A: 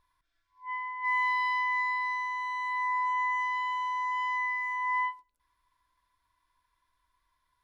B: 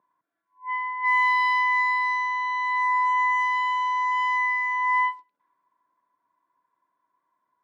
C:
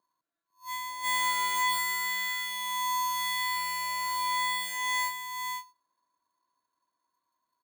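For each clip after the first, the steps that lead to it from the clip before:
high-pass filter 190 Hz 24 dB per octave; low-pass that shuts in the quiet parts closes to 920 Hz, open at −26.5 dBFS; level +7 dB
sample-rate reduction 5,400 Hz, jitter 0%; single-tap delay 502 ms −5.5 dB; level −7.5 dB

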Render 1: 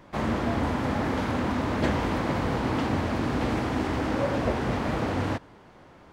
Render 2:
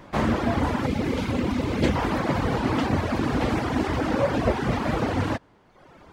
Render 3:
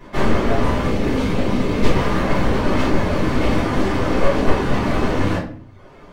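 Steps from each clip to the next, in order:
gain on a spectral selection 0:00.86–0:01.96, 560–2,000 Hz −6 dB; reverb reduction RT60 1.1 s; level +5.5 dB
wavefolder on the positive side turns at −23 dBFS; rectangular room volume 48 cubic metres, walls mixed, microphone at 1.8 metres; level −4 dB

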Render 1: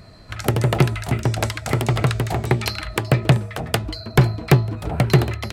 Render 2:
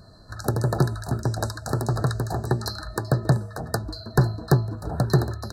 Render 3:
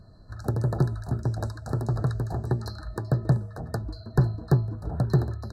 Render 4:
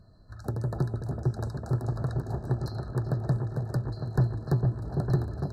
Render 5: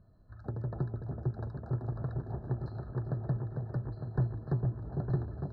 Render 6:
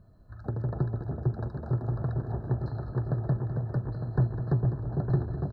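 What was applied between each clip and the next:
brick-wall band-stop 1,800–3,800 Hz; level −4.5 dB
spectral tilt −2 dB per octave; level −7.5 dB
echo whose low-pass opens from repeat to repeat 453 ms, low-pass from 750 Hz, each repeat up 1 octave, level −3 dB; level −5 dB
high-frequency loss of the air 390 metres; level −5.5 dB
single-tap delay 204 ms −10.5 dB; level +5 dB

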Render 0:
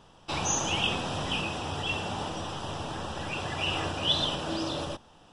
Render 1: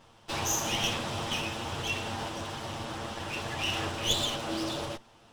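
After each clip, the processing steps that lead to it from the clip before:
lower of the sound and its delayed copy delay 8.8 ms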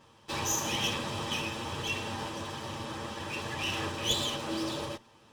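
notch comb filter 710 Hz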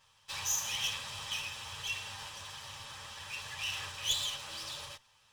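guitar amp tone stack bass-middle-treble 10-0-10

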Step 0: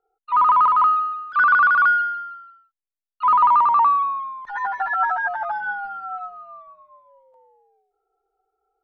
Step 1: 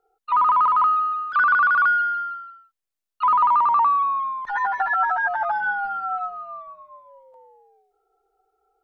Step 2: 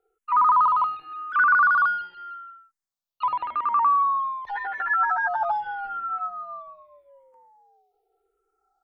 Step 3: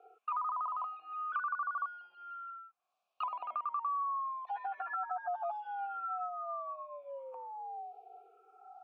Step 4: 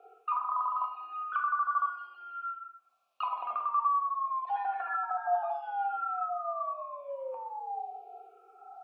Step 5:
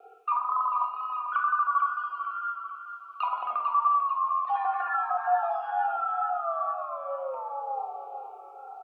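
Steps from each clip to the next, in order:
downward compressor 2 to 1, threshold −27 dBFS, peak gain reduction 8 dB; level +5 dB
frequency shifter mixed with the dry sound −0.85 Hz
formant filter a; multiband upward and downward compressor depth 100%; level −5.5 dB
dense smooth reverb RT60 0.71 s, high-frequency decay 0.8×, pre-delay 0 ms, DRR 3 dB; level +3.5 dB
pitch vibrato 2.1 Hz 32 cents; on a send: repeating echo 445 ms, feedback 47%, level −9 dB; on the sum: level +4 dB

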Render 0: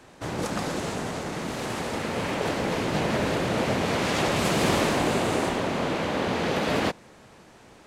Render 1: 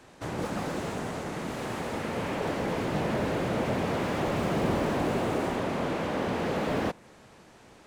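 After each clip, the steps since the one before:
dynamic equaliser 4,700 Hz, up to −4 dB, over −45 dBFS, Q 0.88
slew-rate limiting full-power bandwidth 50 Hz
level −2.5 dB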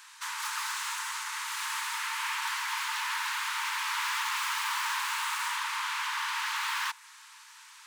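Chebyshev high-pass filter 890 Hz, order 8
spectral tilt +2.5 dB per octave
level +4 dB

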